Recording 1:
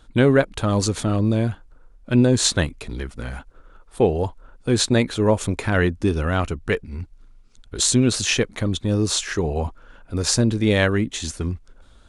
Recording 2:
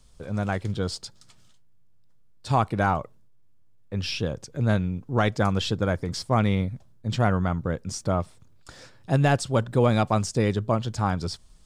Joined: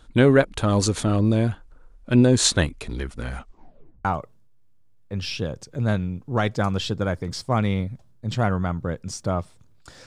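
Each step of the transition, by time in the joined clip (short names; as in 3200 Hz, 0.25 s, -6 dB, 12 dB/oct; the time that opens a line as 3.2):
recording 1
3.35 tape stop 0.70 s
4.05 switch to recording 2 from 2.86 s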